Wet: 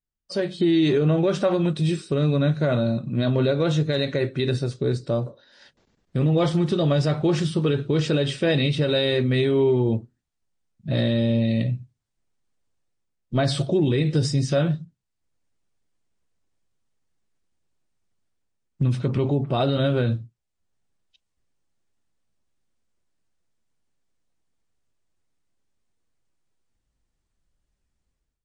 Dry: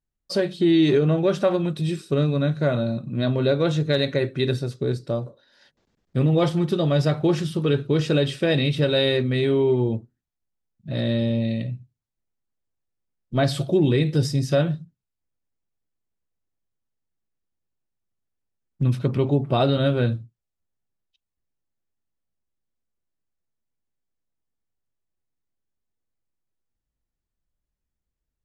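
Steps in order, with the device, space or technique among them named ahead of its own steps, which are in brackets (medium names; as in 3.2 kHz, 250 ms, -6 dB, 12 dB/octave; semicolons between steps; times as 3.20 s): low-bitrate web radio (level rider gain up to 14.5 dB; peak limiter -6.5 dBFS, peak gain reduction 5.5 dB; trim -6 dB; MP3 40 kbps 22.05 kHz)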